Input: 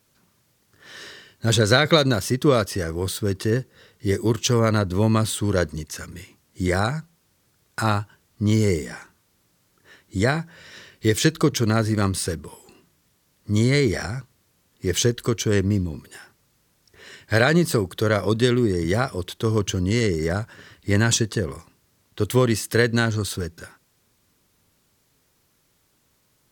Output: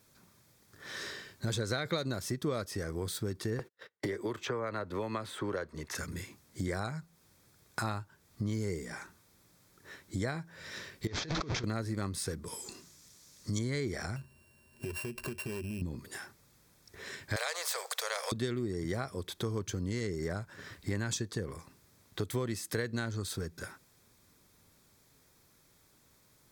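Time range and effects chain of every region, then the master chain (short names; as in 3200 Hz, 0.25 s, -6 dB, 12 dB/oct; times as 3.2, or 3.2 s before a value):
3.59–5.95 gate -48 dBFS, range -53 dB + three-band isolator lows -13 dB, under 390 Hz, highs -15 dB, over 3000 Hz + three-band squash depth 100%
11.07–11.64 delta modulation 32 kbps, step -23 dBFS + negative-ratio compressor -28 dBFS
12.46–13.59 bell 6100 Hz +13.5 dB 1.5 oct + notch 780 Hz, Q 14
14.16–15.82 sample sorter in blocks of 16 samples + ripple EQ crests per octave 1.4, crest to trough 11 dB + compressor 4:1, threshold -33 dBFS
17.36–18.32 steep high-pass 480 Hz 96 dB/oct + bell 12000 Hz -14.5 dB 0.22 oct + spectral compressor 2:1
whole clip: notch 2900 Hz, Q 7.4; compressor 3:1, threshold -36 dBFS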